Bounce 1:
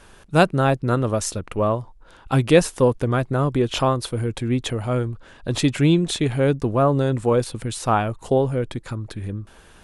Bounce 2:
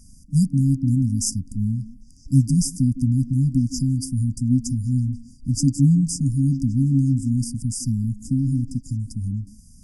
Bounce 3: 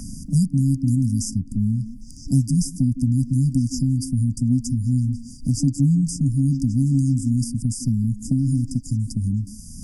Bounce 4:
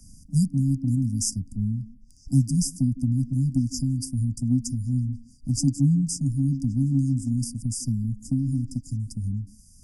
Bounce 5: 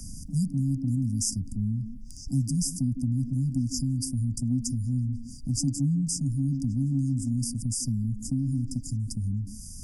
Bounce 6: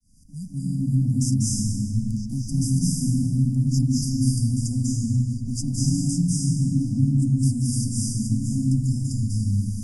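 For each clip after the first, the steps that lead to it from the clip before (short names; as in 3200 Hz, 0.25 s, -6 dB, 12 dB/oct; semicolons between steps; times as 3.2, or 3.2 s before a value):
FFT band-reject 280–4700 Hz; delay with a stepping band-pass 0.16 s, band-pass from 330 Hz, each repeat 0.7 oct, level -9 dB; gain +3.5 dB
three-band squash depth 70%
three-band expander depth 100%; gain -4 dB
fast leveller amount 50%; gain -7 dB
opening faded in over 0.77 s; reverb RT60 1.7 s, pre-delay 0.189 s, DRR -6 dB; gain -3 dB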